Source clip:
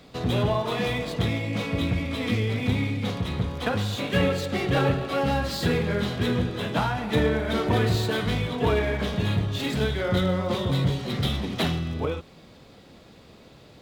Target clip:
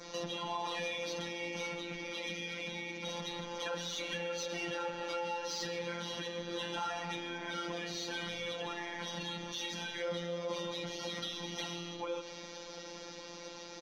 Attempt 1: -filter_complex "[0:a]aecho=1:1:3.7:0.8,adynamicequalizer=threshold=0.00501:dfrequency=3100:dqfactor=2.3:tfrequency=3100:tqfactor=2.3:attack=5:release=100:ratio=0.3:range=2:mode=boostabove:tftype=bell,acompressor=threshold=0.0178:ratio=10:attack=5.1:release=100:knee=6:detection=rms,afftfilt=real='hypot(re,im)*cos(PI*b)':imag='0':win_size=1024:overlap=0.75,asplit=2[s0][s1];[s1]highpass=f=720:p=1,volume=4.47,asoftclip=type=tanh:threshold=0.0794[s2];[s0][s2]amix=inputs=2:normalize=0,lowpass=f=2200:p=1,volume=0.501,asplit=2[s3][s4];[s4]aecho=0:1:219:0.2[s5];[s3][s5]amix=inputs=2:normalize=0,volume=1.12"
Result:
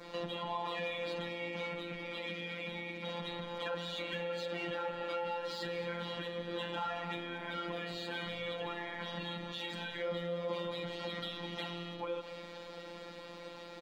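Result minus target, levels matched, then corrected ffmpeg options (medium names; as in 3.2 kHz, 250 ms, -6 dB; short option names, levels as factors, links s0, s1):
8 kHz band -15.5 dB; echo 88 ms late
-filter_complex "[0:a]aecho=1:1:3.7:0.8,adynamicequalizer=threshold=0.00501:dfrequency=3100:dqfactor=2.3:tfrequency=3100:tqfactor=2.3:attack=5:release=100:ratio=0.3:range=2:mode=boostabove:tftype=bell,acompressor=threshold=0.0178:ratio=10:attack=5.1:release=100:knee=6:detection=rms,lowpass=f=6000:t=q:w=10,afftfilt=real='hypot(re,im)*cos(PI*b)':imag='0':win_size=1024:overlap=0.75,asplit=2[s0][s1];[s1]highpass=f=720:p=1,volume=4.47,asoftclip=type=tanh:threshold=0.0794[s2];[s0][s2]amix=inputs=2:normalize=0,lowpass=f=2200:p=1,volume=0.501,asplit=2[s3][s4];[s4]aecho=0:1:131:0.2[s5];[s3][s5]amix=inputs=2:normalize=0,volume=1.12"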